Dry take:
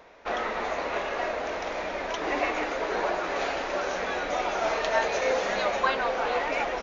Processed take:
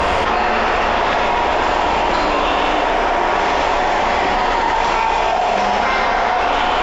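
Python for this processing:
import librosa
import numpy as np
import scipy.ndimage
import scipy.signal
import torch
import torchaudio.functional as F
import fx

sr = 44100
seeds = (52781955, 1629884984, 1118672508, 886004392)

y = fx.tilt_eq(x, sr, slope=-2.0)
y = fx.formant_shift(y, sr, semitones=5)
y = fx.rev_plate(y, sr, seeds[0], rt60_s=2.7, hf_ratio=0.9, predelay_ms=0, drr_db=-6.5)
y = fx.env_flatten(y, sr, amount_pct=100)
y = y * 10.0 ** (-2.0 / 20.0)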